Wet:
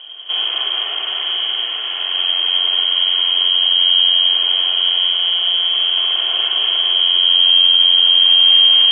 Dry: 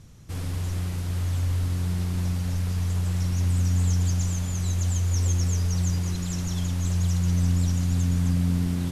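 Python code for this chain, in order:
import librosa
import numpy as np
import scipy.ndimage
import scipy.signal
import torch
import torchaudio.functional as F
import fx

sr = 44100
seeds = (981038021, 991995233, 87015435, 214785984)

p1 = fx.lower_of_two(x, sr, delay_ms=0.42)
p2 = fx.rider(p1, sr, range_db=3, speed_s=0.5)
p3 = p1 + (p2 * 10.0 ** (1.0 / 20.0))
p4 = fx.fold_sine(p3, sr, drive_db=6, ceiling_db=-7.5)
p5 = p4 + 10.0 ** (-5.0 / 20.0) * np.pad(p4, (int(240 * sr / 1000.0), 0))[:len(p4)]
p6 = fx.rev_spring(p5, sr, rt60_s=1.3, pass_ms=(43, 49), chirp_ms=60, drr_db=1.5)
p7 = fx.freq_invert(p6, sr, carrier_hz=3200)
p8 = scipy.signal.sosfilt(scipy.signal.butter(4, 400.0, 'highpass', fs=sr, output='sos'), p7)
p9 = fx.air_absorb(p8, sr, metres=290.0)
p10 = p9 + 0.39 * np.pad(p9, (int(2.8 * sr / 1000.0), 0))[:len(p9)]
y = p10 * 10.0 ** (-1.0 / 20.0)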